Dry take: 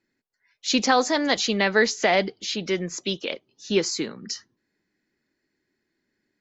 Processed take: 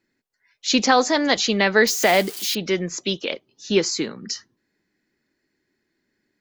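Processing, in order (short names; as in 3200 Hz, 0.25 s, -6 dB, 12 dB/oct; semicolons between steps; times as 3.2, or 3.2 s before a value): 1.87–2.55 switching spikes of -25 dBFS; gain +3 dB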